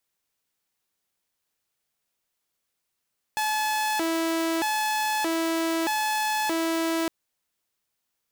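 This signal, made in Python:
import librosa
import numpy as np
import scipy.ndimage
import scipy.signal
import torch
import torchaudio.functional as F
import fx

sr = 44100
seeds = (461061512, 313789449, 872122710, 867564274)

y = fx.siren(sr, length_s=3.71, kind='hi-lo', low_hz=328.0, high_hz=859.0, per_s=0.8, wave='saw', level_db=-21.0)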